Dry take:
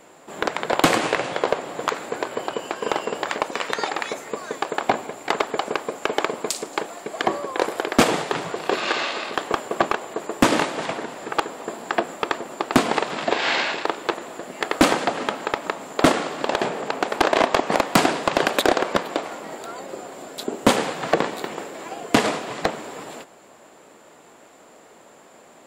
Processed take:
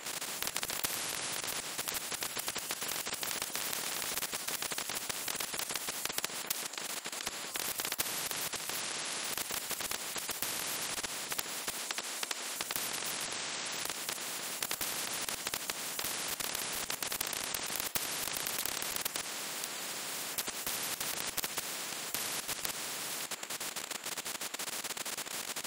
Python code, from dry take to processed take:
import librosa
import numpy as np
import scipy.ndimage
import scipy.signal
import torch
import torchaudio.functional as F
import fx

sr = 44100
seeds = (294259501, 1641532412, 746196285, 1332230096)

y = fx.echo_throw(x, sr, start_s=3.27, length_s=0.4, ms=310, feedback_pct=65, wet_db=-3.5)
y = fx.bandpass_q(y, sr, hz=3400.0, q=0.52, at=(11.78, 12.56))
y = fx.edit(y, sr, fx.fade_down_up(start_s=5.86, length_s=1.82, db=-12.0, fade_s=0.46), tone=tone)
y = fx.highpass(y, sr, hz=1200.0, slope=6)
y = fx.level_steps(y, sr, step_db=18)
y = fx.spectral_comp(y, sr, ratio=10.0)
y = y * 10.0 ** (-1.0 / 20.0)